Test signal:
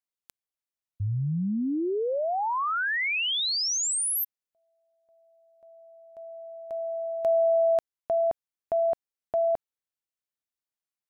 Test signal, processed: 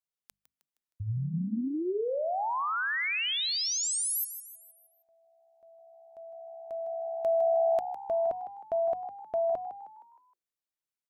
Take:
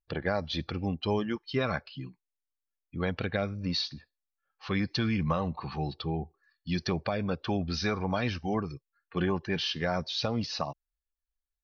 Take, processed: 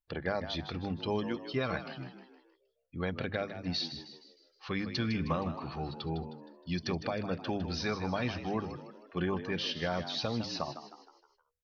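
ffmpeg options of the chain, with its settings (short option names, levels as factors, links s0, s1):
-filter_complex "[0:a]bandreject=f=50:t=h:w=6,bandreject=f=100:t=h:w=6,bandreject=f=150:t=h:w=6,bandreject=f=200:t=h:w=6,asplit=6[s0][s1][s2][s3][s4][s5];[s1]adelay=156,afreqshift=67,volume=0.282[s6];[s2]adelay=312,afreqshift=134,volume=0.127[s7];[s3]adelay=468,afreqshift=201,volume=0.0569[s8];[s4]adelay=624,afreqshift=268,volume=0.0257[s9];[s5]adelay=780,afreqshift=335,volume=0.0116[s10];[s0][s6][s7][s8][s9][s10]amix=inputs=6:normalize=0,volume=0.668"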